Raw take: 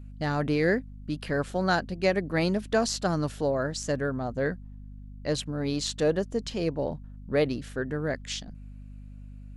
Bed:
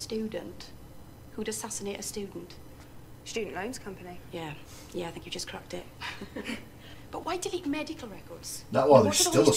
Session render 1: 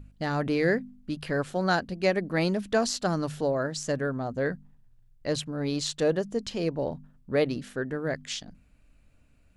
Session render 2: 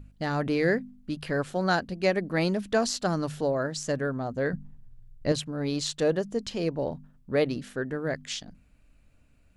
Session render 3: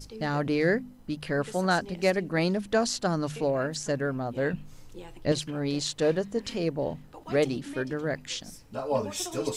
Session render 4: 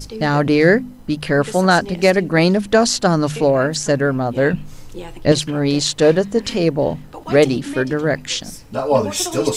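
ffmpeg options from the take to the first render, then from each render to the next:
-af "bandreject=f=50:t=h:w=4,bandreject=f=100:t=h:w=4,bandreject=f=150:t=h:w=4,bandreject=f=200:t=h:w=4,bandreject=f=250:t=h:w=4"
-filter_complex "[0:a]asettb=1/sr,asplit=3[s0][s1][s2];[s0]atrim=end=4.534[s3];[s1]atrim=start=4.53:end=5.32,asetpts=PTS-STARTPTS,afade=t=in:d=0.004:c=qsin,afade=t=out:st=0.786:d=0.004:c=qsin,lowshelf=f=350:g=10[s4];[s2]atrim=start=5.316[s5];[s3][s4]acrossfade=d=0.004:c1=hsin:c2=qsin[s6];[s6][s5]acrossfade=d=0.004:c1=qsin:c2=hsin"
-filter_complex "[1:a]volume=0.335[s0];[0:a][s0]amix=inputs=2:normalize=0"
-af "volume=3.98,alimiter=limit=0.891:level=0:latency=1"

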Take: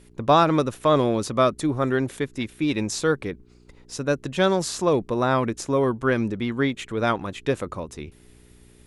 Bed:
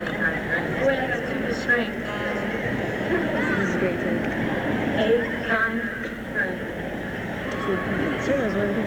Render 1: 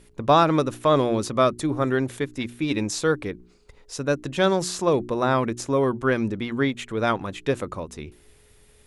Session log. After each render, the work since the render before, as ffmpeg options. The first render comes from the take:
-af "bandreject=f=60:t=h:w=4,bandreject=f=120:t=h:w=4,bandreject=f=180:t=h:w=4,bandreject=f=240:t=h:w=4,bandreject=f=300:t=h:w=4,bandreject=f=360:t=h:w=4"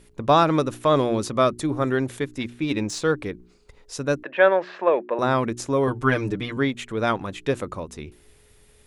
-filter_complex "[0:a]asettb=1/sr,asplit=3[s0][s1][s2];[s0]atrim=end=2.474[s3];[s1]atrim=start=2.47:end=3.18,asetpts=PTS-STARTPTS,afade=t=in:d=0.004:c=qsin,afade=t=out:st=0.706:d=0.004:c=qsin,adynamicsmooth=sensitivity=3:basefreq=7000[s4];[s2]atrim=start=3.176[s5];[s3][s4]acrossfade=d=0.004:c1=hsin:c2=qsin[s6];[s6][s5]acrossfade=d=0.004:c1=qsin:c2=hsin,asettb=1/sr,asplit=3[s7][s8][s9];[s7]atrim=end=4.234[s10];[s8]atrim=start=4.23:end=5.19,asetpts=PTS-STARTPTS,afade=t=in:d=0.004:c=qsin,afade=t=out:st=0.956:d=0.004:c=qsin,highpass=f=280:w=0.5412,highpass=f=280:w=1.3066,equalizer=f=280:t=q:w=4:g=-9,equalizer=f=400:t=q:w=4:g=-3,equalizer=f=590:t=q:w=4:g=8,equalizer=f=910:t=q:w=4:g=3,equalizer=f=1700:t=q:w=4:g=10,equalizer=f=2500:t=q:w=4:g=4,lowpass=f=2700:w=0.5412,lowpass=f=2700:w=1.3066[s11];[s9]atrim=start=5.186[s12];[s10][s11]acrossfade=d=0.004:c1=hsin:c2=qsin[s13];[s13][s12]acrossfade=d=0.004:c1=qsin:c2=hsin,asettb=1/sr,asplit=3[s14][s15][s16];[s14]atrim=end=5.874[s17];[s15]atrim=start=5.87:end=6.57,asetpts=PTS-STARTPTS,afade=t=in:d=0.004:c=qsin,afade=t=out:st=0.696:d=0.004:c=qsin,aecho=1:1:6.7:0.98,atrim=end_sample=30870[s18];[s16]atrim=start=6.566[s19];[s17][s18]acrossfade=d=0.004:c1=hsin:c2=qsin[s20];[s20][s19]acrossfade=d=0.004:c1=qsin:c2=hsin"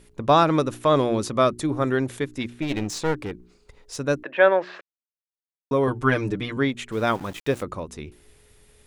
-filter_complex "[0:a]asplit=3[s0][s1][s2];[s0]afade=t=out:st=2.61:d=0.02[s3];[s1]aeval=exprs='clip(val(0),-1,0.0355)':c=same,afade=t=in:st=2.61:d=0.02,afade=t=out:st=3.98:d=0.02[s4];[s2]afade=t=in:st=3.98:d=0.02[s5];[s3][s4][s5]amix=inputs=3:normalize=0,asettb=1/sr,asplit=3[s6][s7][s8];[s6]atrim=end=6.924[s9];[s7]atrim=start=6.92:end=7.63,asetpts=PTS-STARTPTS,afade=t=in:d=0.004:c=qsin,afade=t=out:st=0.706:d=0.004:c=qsin,aeval=exprs='val(0)*gte(abs(val(0)),0.0112)':c=same[s10];[s8]atrim=start=7.626[s11];[s9][s10]acrossfade=d=0.004:c1=hsin:c2=qsin[s12];[s12][s11]acrossfade=d=0.004:c1=qsin:c2=hsin,asplit=3[s13][s14][s15];[s13]atrim=end=4.81,asetpts=PTS-STARTPTS,afade=t=out:st=4.806:d=0.004:c=hsin[s16];[s14]atrim=start=4.81:end=5.71,asetpts=PTS-STARTPTS,volume=0[s17];[s15]atrim=start=5.71,asetpts=PTS-STARTPTS,afade=t=in:d=0.004:c=hsin[s18];[s16][s17][s18]concat=n=3:v=0:a=1"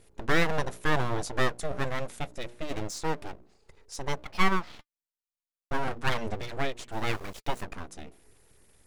-filter_complex "[0:a]flanger=delay=2.3:depth=1.7:regen=-71:speed=0.27:shape=triangular,acrossover=split=3300[s0][s1];[s0]aeval=exprs='abs(val(0))':c=same[s2];[s2][s1]amix=inputs=2:normalize=0"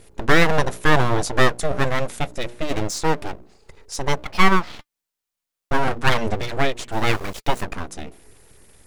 -af "volume=3.16,alimiter=limit=0.891:level=0:latency=1"

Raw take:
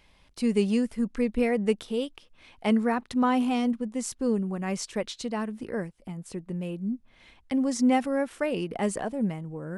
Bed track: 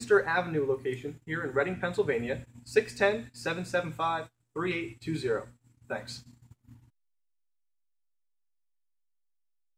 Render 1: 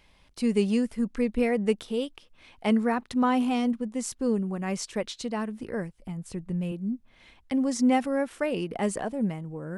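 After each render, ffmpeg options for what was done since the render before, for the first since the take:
-filter_complex "[0:a]asettb=1/sr,asplit=3[s0][s1][s2];[s0]atrim=end=5.464[s3];[s1]atrim=start=5.46:end=6.72,asetpts=PTS-STARTPTS,afade=t=in:d=0.004:c=qsin,afade=t=out:st=1.256:d=0.004:c=qsin,asubboost=boost=7:cutoff=170[s4];[s2]atrim=start=6.716[s5];[s3][s4]acrossfade=d=0.004:c1=hsin:c2=qsin[s6];[s6][s5]acrossfade=d=0.004:c1=qsin:c2=hsin"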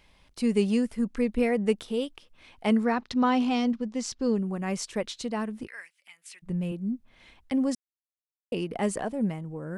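-filter_complex "[0:a]asettb=1/sr,asplit=3[s0][s1][s2];[s0]atrim=end=2.854[s3];[s1]atrim=start=2.85:end=4.39,asetpts=PTS-STARTPTS,afade=t=in:d=0.004:c=qsin,afade=t=out:st=1.536:d=0.004:c=qsin,lowpass=f=5200:t=q:w=1.9[s4];[s2]atrim=start=4.386[s5];[s3][s4]acrossfade=d=0.004:c1=hsin:c2=qsin[s6];[s6][s5]acrossfade=d=0.004:c1=qsin:c2=hsin,asplit=3[s7][s8][s9];[s7]afade=t=out:st=5.66:d=0.02[s10];[s8]highpass=f=2200:t=q:w=2.2,afade=t=in:st=5.66:d=0.02,afade=t=out:st=6.42:d=0.02[s11];[s9]afade=t=in:st=6.42:d=0.02[s12];[s10][s11][s12]amix=inputs=3:normalize=0,asplit=3[s13][s14][s15];[s13]atrim=end=7.75,asetpts=PTS-STARTPTS,afade=t=out:st=7.746:d=0.004:c=hsin[s16];[s14]atrim=start=7.75:end=8.52,asetpts=PTS-STARTPTS,volume=0[s17];[s15]atrim=start=8.52,asetpts=PTS-STARTPTS,afade=t=in:d=0.004:c=hsin[s18];[s16][s17][s18]concat=n=3:v=0:a=1"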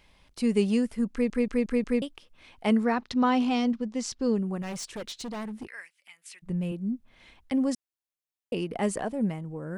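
-filter_complex "[0:a]asettb=1/sr,asplit=3[s0][s1][s2];[s0]atrim=end=4.624[s3];[s1]atrim=start=4.62:end=5.77,asetpts=PTS-STARTPTS,afade=t=in:d=0.004:c=qsin,afade=t=out:st=1.146:d=0.004:c=qsin,asoftclip=type=hard:threshold=0.0224[s4];[s2]atrim=start=5.766[s5];[s3][s4]acrossfade=d=0.004:c1=hsin:c2=qsin[s6];[s6][s5]acrossfade=d=0.004:c1=qsin:c2=hsin,asplit=6[s7][s8][s9][s10][s11][s12];[s7]atrim=end=1.302[s13];[s8]atrim=start=1.118:end=1.302[s14];[s9]atrim=start=1.118:end=1.302[s15];[s10]atrim=start=1.118:end=1.302[s16];[s11]atrim=start=1.118:end=1.302[s17];[s12]atrim=start=2.018[s18];[s13][s14]acrossfade=d=0.004:c1=hsin:c2=hsin[s19];[s19][s15]acrossfade=d=0.004:c1=hsin:c2=hsin[s20];[s20][s16]acrossfade=d=0.004:c1=hsin:c2=hsin[s21];[s21][s17]acrossfade=d=0.004:c1=hsin:c2=hsin[s22];[s22][s18]acrossfade=d=0.004:c1=hsin:c2=hsin"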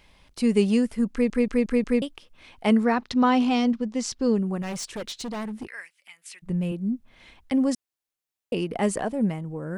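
-af "volume=1.5"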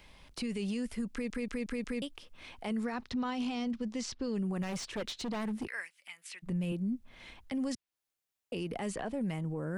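-filter_complex "[0:a]acrossover=split=100|1800|4600[s0][s1][s2][s3];[s0]acompressor=threshold=0.00631:ratio=4[s4];[s1]acompressor=threshold=0.0282:ratio=4[s5];[s2]acompressor=threshold=0.00891:ratio=4[s6];[s3]acompressor=threshold=0.00316:ratio=4[s7];[s4][s5][s6][s7]amix=inputs=4:normalize=0,alimiter=level_in=1.58:limit=0.0631:level=0:latency=1:release=16,volume=0.631"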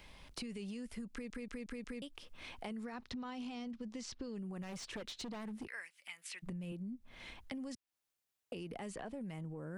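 -af "acompressor=threshold=0.00794:ratio=6"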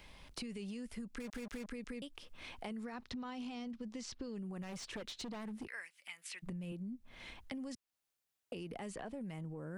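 -filter_complex "[0:a]asettb=1/sr,asplit=3[s0][s1][s2];[s0]atrim=end=1.204[s3];[s1]atrim=start=1.2:end=1.66,asetpts=PTS-STARTPTS,afade=t=in:d=0.004:c=qsin,afade=t=out:st=0.456:d=0.004:c=qsin,acrusher=bits=7:mix=0:aa=0.5[s4];[s2]atrim=start=1.656[s5];[s3][s4]acrossfade=d=0.004:c1=hsin:c2=qsin[s6];[s6][s5]acrossfade=d=0.004:c1=qsin:c2=hsin"

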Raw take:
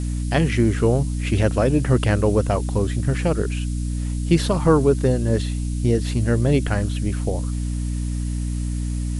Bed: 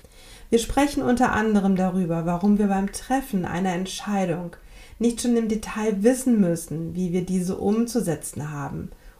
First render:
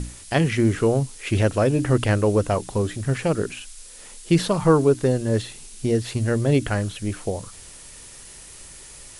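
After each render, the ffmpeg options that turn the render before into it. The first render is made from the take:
-af "bandreject=f=60:t=h:w=6,bandreject=f=120:t=h:w=6,bandreject=f=180:t=h:w=6,bandreject=f=240:t=h:w=6,bandreject=f=300:t=h:w=6"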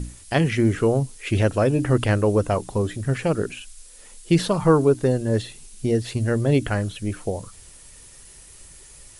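-af "afftdn=nr=6:nf=-43"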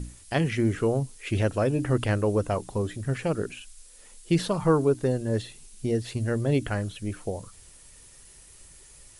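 -af "volume=0.562"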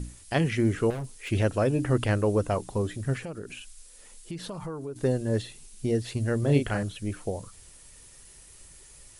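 -filter_complex "[0:a]asettb=1/sr,asplit=3[s0][s1][s2];[s0]atrim=end=0.904[s3];[s1]atrim=start=0.9:end=1.3,asetpts=PTS-STARTPTS,afade=t=in:d=0.004:c=qsin,afade=t=out:st=0.396:d=0.004:c=qsin,volume=37.6,asoftclip=hard,volume=0.0266[s4];[s2]atrim=start=1.296[s5];[s3][s4]acrossfade=d=0.004:c1=hsin:c2=qsin[s6];[s6][s5]acrossfade=d=0.004:c1=qsin:c2=hsin,asettb=1/sr,asplit=3[s7][s8][s9];[s7]atrim=end=3.184[s10];[s8]atrim=start=3.18:end=4.96,asetpts=PTS-STARTPTS,afade=t=in:d=0.004:c=qsin,afade=t=out:st=1.776:d=0.004:c=qsin,acompressor=threshold=0.0178:ratio=4:attack=3.2:release=140:knee=1:detection=peak[s11];[s9]atrim=start=4.956[s12];[s10][s11]acrossfade=d=0.004:c1=hsin:c2=qsin[s13];[s13][s12]acrossfade=d=0.004:c1=qsin:c2=hsin,asettb=1/sr,asplit=3[s14][s15][s16];[s14]atrim=end=6.394[s17];[s15]atrim=start=6.39:end=6.83,asetpts=PTS-STARTPTS,afade=t=in:d=0.004:c=qsin,afade=t=out:st=0.436:d=0.004:c=qsin,asplit=2[s18][s19];[s19]adelay=35,volume=0.501[s20];[s18][s20]amix=inputs=2:normalize=0,atrim=end_sample=19404[s21];[s16]atrim=start=6.826[s22];[s17][s21]acrossfade=d=0.004:c1=hsin:c2=qsin[s23];[s23][s22]acrossfade=d=0.004:c1=qsin:c2=hsin"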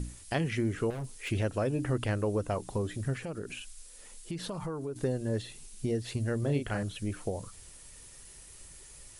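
-af "acompressor=threshold=0.0282:ratio=2"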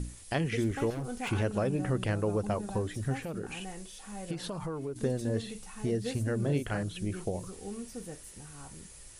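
-filter_complex "[1:a]volume=0.112[s0];[0:a][s0]amix=inputs=2:normalize=0"

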